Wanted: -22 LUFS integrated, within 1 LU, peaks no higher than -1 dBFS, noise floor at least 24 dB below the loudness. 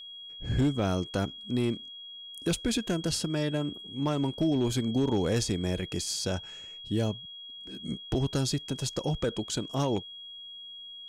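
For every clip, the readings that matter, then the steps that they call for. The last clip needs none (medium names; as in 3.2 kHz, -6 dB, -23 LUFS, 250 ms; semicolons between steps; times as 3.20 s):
clipped samples 0.7%; clipping level -20.0 dBFS; steady tone 3.3 kHz; tone level -42 dBFS; loudness -30.5 LUFS; peak level -20.0 dBFS; loudness target -22.0 LUFS
-> clip repair -20 dBFS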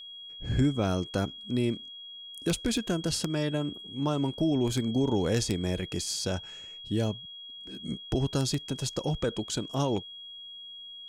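clipped samples 0.0%; steady tone 3.3 kHz; tone level -42 dBFS
-> band-stop 3.3 kHz, Q 30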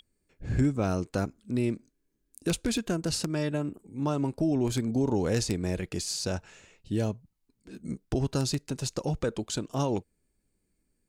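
steady tone not found; loudness -30.5 LUFS; peak level -11.0 dBFS; loudness target -22.0 LUFS
-> trim +8.5 dB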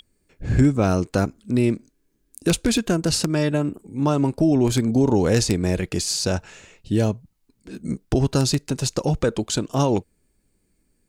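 loudness -22.0 LUFS; peak level -2.5 dBFS; noise floor -69 dBFS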